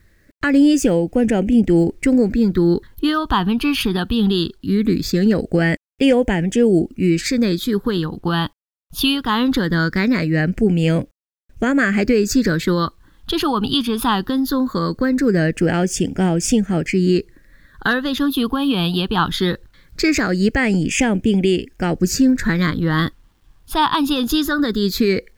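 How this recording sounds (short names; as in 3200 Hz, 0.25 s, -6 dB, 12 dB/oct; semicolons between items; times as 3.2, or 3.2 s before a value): phasing stages 6, 0.2 Hz, lowest notch 550–1100 Hz; a quantiser's noise floor 12-bit, dither none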